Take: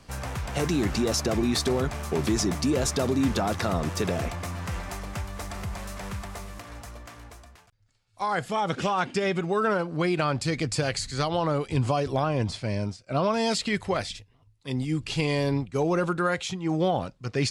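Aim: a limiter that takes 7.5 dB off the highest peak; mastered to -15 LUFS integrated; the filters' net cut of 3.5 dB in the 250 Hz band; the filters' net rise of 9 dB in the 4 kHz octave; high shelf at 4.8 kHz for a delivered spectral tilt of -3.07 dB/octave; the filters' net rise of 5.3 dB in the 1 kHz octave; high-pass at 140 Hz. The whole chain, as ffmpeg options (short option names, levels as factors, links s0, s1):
-af "highpass=140,equalizer=f=250:t=o:g=-4.5,equalizer=f=1000:t=o:g=6.5,equalizer=f=4000:t=o:g=7,highshelf=f=4800:g=7.5,volume=3.76,alimiter=limit=0.794:level=0:latency=1"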